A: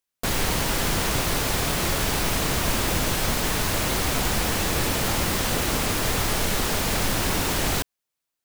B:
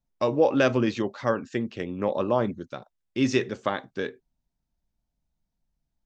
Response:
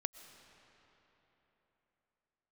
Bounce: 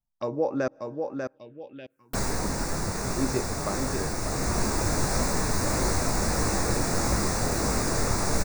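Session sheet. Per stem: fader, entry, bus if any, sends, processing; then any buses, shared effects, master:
0.0 dB, 1.90 s, send -5.5 dB, no echo send, detune thickener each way 53 cents; auto duck -7 dB, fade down 0.25 s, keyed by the second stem
-6.5 dB, 0.00 s, muted 0.68–2.44 s, send -16 dB, echo send -4 dB, none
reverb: on, RT60 3.9 s, pre-delay 80 ms
echo: feedback delay 593 ms, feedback 35%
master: touch-sensitive phaser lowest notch 400 Hz, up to 3.1 kHz, full sweep at -30.5 dBFS

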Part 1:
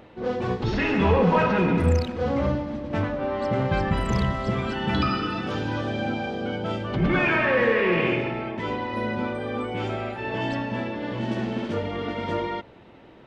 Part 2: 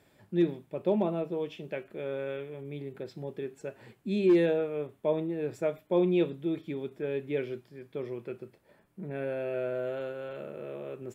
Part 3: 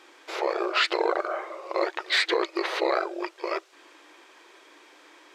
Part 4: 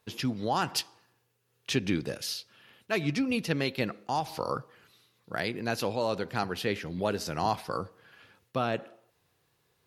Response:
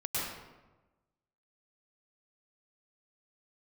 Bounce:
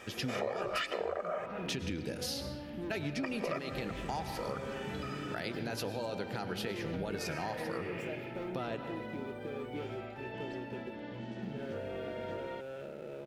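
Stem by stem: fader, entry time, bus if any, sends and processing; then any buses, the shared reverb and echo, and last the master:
-10.0 dB, 0.00 s, no send, compression 2:1, threshold -33 dBFS, peak gain reduction 10 dB
-11.5 dB, 2.45 s, no send, waveshaping leveller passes 3; compression, threshold -29 dBFS, peak gain reduction 10.5 dB
+2.0 dB, 0.00 s, muted 1.46–3.23 s, send -19 dB, peaking EQ 4.2 kHz -12 dB 0.45 oct; comb 1.7 ms, depth 67%
-2.5 dB, 0.00 s, send -15 dB, peak limiter -20.5 dBFS, peak gain reduction 6 dB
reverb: on, RT60 1.1 s, pre-delay 96 ms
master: band-stop 1.1 kHz, Q 6.8; compression 6:1, threshold -33 dBFS, peak gain reduction 16.5 dB

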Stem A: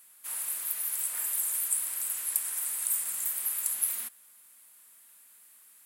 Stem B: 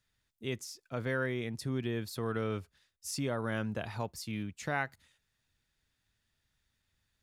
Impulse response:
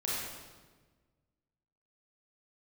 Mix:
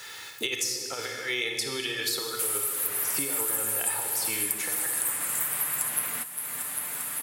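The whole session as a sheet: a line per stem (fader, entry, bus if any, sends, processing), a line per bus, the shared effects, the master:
+1.5 dB, 2.15 s, no send, echo send -16.5 dB, comb 6.8 ms, depth 55%
0.0 dB, 0.00 s, send -3.5 dB, no echo send, high-pass 610 Hz 12 dB/octave; comb 2.3 ms, depth 61%; compressor with a negative ratio -42 dBFS, ratio -0.5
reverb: on, RT60 1.4 s, pre-delay 27 ms
echo: feedback delay 399 ms, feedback 56%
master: bass shelf 240 Hz +10.5 dB; three bands compressed up and down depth 100%

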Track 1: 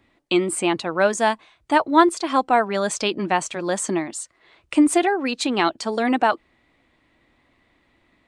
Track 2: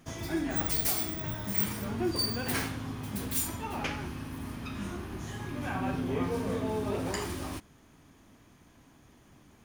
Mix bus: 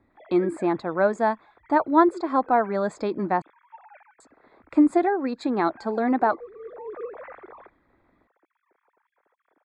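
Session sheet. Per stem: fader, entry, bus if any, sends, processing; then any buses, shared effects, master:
-1.5 dB, 0.00 s, muted 3.42–4.20 s, no send, none
-2.0 dB, 0.10 s, no send, formants replaced by sine waves; tilt EQ +2 dB/octave; auto duck -10 dB, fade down 1.35 s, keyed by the first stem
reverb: none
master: boxcar filter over 15 samples

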